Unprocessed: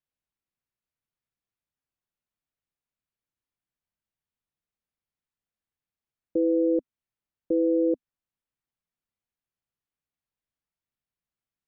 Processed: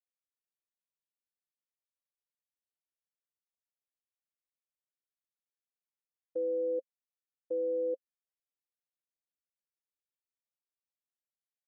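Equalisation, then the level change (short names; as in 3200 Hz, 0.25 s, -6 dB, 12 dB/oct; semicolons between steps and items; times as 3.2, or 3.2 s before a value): vowel filter e; dynamic EQ 420 Hz, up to +4 dB, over -43 dBFS, Q 0.97; -6.5 dB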